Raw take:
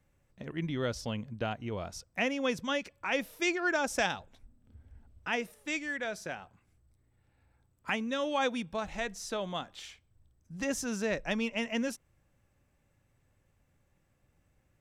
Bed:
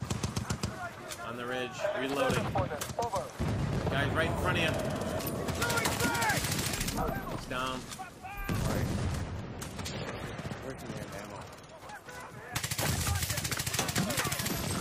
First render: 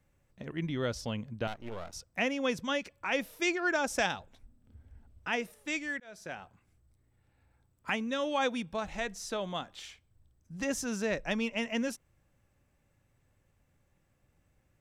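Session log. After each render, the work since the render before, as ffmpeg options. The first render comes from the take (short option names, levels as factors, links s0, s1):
-filter_complex "[0:a]asettb=1/sr,asplit=3[s0][s1][s2];[s0]atrim=end=1.474[s3];[s1]atrim=start=1.47:end=1.93,asetpts=PTS-STARTPTS,afade=t=in:d=0.004:c=qsin,afade=t=out:st=0.456:d=0.004:c=qsin,aeval=exprs='max(val(0),0)':c=same[s4];[s2]atrim=start=1.926[s5];[s3][s4]acrossfade=d=0.004:c1=hsin:c2=qsin[s6];[s6][s5]acrossfade=d=0.004:c1=qsin:c2=hsin,asplit=2[s7][s8];[s7]atrim=end=6,asetpts=PTS-STARTPTS,afade=t=out:st=5.996:d=0.004:c=hsin[s9];[s8]atrim=start=6,asetpts=PTS-STARTPTS,afade=t=in:d=0.4[s10];[s9][s10]concat=n=2:v=0:a=1"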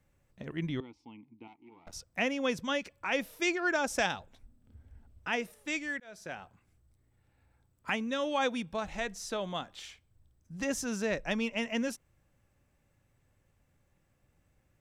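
-filter_complex "[0:a]asettb=1/sr,asplit=3[s0][s1][s2];[s0]atrim=end=0.804[s3];[s1]atrim=start=0.8:end=1.87,asetpts=PTS-STARTPTS,afade=t=in:d=0.004:c=qsin,afade=t=out:st=1.066:d=0.004:c=qsin,asplit=3[s4][s5][s6];[s4]bandpass=f=300:t=q:w=8,volume=1[s7];[s5]bandpass=f=870:t=q:w=8,volume=0.501[s8];[s6]bandpass=f=2240:t=q:w=8,volume=0.355[s9];[s7][s8][s9]amix=inputs=3:normalize=0[s10];[s2]atrim=start=1.866[s11];[s3][s10]acrossfade=d=0.004:c1=hsin:c2=qsin[s12];[s12][s11]acrossfade=d=0.004:c1=qsin:c2=hsin"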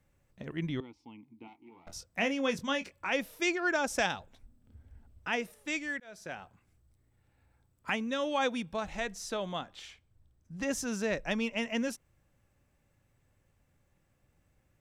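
-filter_complex "[0:a]asettb=1/sr,asplit=3[s0][s1][s2];[s0]atrim=end=1.284[s3];[s1]atrim=start=1.28:end=3.1,asetpts=PTS-STARTPTS,afade=t=in:d=0.004:c=qsin,afade=t=out:st=1.816:d=0.004:c=qsin,asplit=2[s4][s5];[s5]adelay=22,volume=0.355[s6];[s4][s6]amix=inputs=2:normalize=0,atrim=end_sample=80262[s7];[s2]atrim=start=3.096[s8];[s3][s7]acrossfade=d=0.004:c1=hsin:c2=qsin[s9];[s9][s8]acrossfade=d=0.004:c1=qsin:c2=hsin,asettb=1/sr,asplit=3[s10][s11][s12];[s10]atrim=end=9.554[s13];[s11]atrim=start=9.55:end=10.67,asetpts=PTS-STARTPTS,afade=t=in:d=0.004:c=qsin,afade=t=out:st=1.116:d=0.004:c=qsin,highshelf=f=6100:g=-6.5[s14];[s12]atrim=start=10.666[s15];[s13][s14]acrossfade=d=0.004:c1=hsin:c2=qsin[s16];[s16][s15]acrossfade=d=0.004:c1=qsin:c2=hsin"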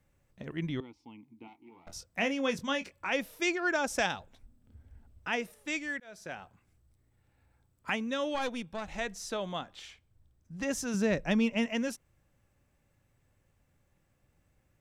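-filter_complex "[0:a]asplit=3[s0][s1][s2];[s0]afade=t=out:st=8.34:d=0.02[s3];[s1]aeval=exprs='(tanh(22.4*val(0)+0.6)-tanh(0.6))/22.4':c=same,afade=t=in:st=8.34:d=0.02,afade=t=out:st=8.88:d=0.02[s4];[s2]afade=t=in:st=8.88:d=0.02[s5];[s3][s4][s5]amix=inputs=3:normalize=0,asettb=1/sr,asplit=3[s6][s7][s8];[s6]atrim=end=10.944[s9];[s7]atrim=start=10.94:end=11.66,asetpts=PTS-STARTPTS,afade=t=in:d=0.004:c=qsin,afade=t=out:st=0.716:d=0.004:c=qsin,equalizer=f=150:t=o:w=2.5:g=8[s10];[s8]atrim=start=11.656[s11];[s9][s10]acrossfade=d=0.004:c1=hsin:c2=qsin[s12];[s12][s11]acrossfade=d=0.004:c1=qsin:c2=hsin"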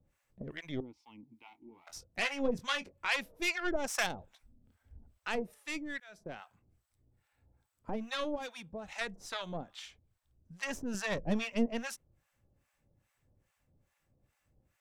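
-filter_complex "[0:a]aeval=exprs='0.178*(cos(1*acos(clip(val(0)/0.178,-1,1)))-cos(1*PI/2))+0.0178*(cos(5*acos(clip(val(0)/0.178,-1,1)))-cos(5*PI/2))+0.0316*(cos(6*acos(clip(val(0)/0.178,-1,1)))-cos(6*PI/2))+0.00794*(cos(7*acos(clip(val(0)/0.178,-1,1)))-cos(7*PI/2))':c=same,acrossover=split=750[s0][s1];[s0]aeval=exprs='val(0)*(1-1/2+1/2*cos(2*PI*2.4*n/s))':c=same[s2];[s1]aeval=exprs='val(0)*(1-1/2-1/2*cos(2*PI*2.4*n/s))':c=same[s3];[s2][s3]amix=inputs=2:normalize=0"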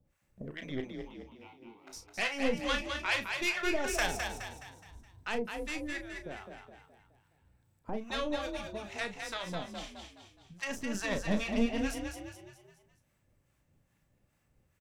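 -filter_complex "[0:a]asplit=2[s0][s1];[s1]adelay=34,volume=0.355[s2];[s0][s2]amix=inputs=2:normalize=0,asplit=6[s3][s4][s5][s6][s7][s8];[s4]adelay=210,afreqshift=32,volume=0.531[s9];[s5]adelay=420,afreqshift=64,volume=0.24[s10];[s6]adelay=630,afreqshift=96,volume=0.107[s11];[s7]adelay=840,afreqshift=128,volume=0.0484[s12];[s8]adelay=1050,afreqshift=160,volume=0.0219[s13];[s3][s9][s10][s11][s12][s13]amix=inputs=6:normalize=0"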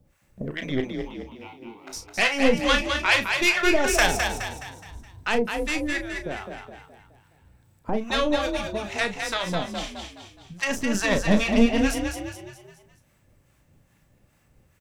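-af "volume=3.55"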